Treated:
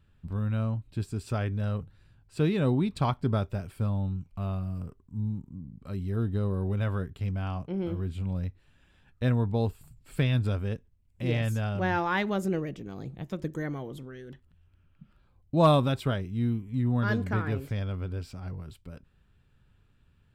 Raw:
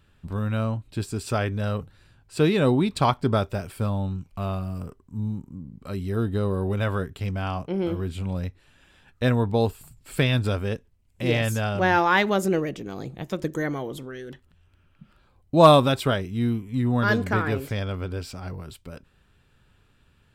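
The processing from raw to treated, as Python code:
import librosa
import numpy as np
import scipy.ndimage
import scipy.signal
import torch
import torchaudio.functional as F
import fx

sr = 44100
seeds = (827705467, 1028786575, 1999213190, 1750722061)

y = fx.bass_treble(x, sr, bass_db=7, treble_db=-3)
y = y * librosa.db_to_amplitude(-8.5)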